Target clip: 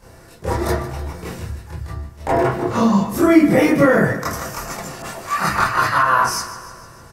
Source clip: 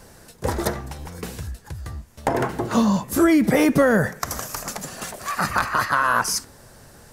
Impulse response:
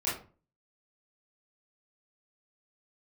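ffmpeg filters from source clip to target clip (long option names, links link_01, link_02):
-filter_complex "[0:a]highshelf=frequency=4600:gain=-5,aecho=1:1:151|302|453|604|755|906:0.2|0.116|0.0671|0.0389|0.0226|0.0131[link_01];[1:a]atrim=start_sample=2205,afade=type=out:start_time=0.14:duration=0.01,atrim=end_sample=6615[link_02];[link_01][link_02]afir=irnorm=-1:irlink=0,asettb=1/sr,asplit=3[link_03][link_04][link_05];[link_03]atrim=end=5.024[link_06];[link_04]atrim=start=5.02:end=6.03,asetpts=PTS-STARTPTS,afade=type=in:duration=0.004:curve=qsin,afade=type=out:start_time=1.006:duration=0.004:curve=qsin,adynamicequalizer=threshold=0.0501:dfrequency=2200:dqfactor=0.7:tfrequency=2200:tqfactor=0.7:attack=5:release=100:ratio=0.375:range=2:mode=boostabove:tftype=highshelf[link_07];[link_05]atrim=start=6.026[link_08];[link_06][link_07]acrossfade=duration=0.004:curve1=hsin:curve2=qsin[link_09];[link_09][link_08]acrossfade=duration=0.004:curve1=qsin:curve2=hsin,volume=-2.5dB"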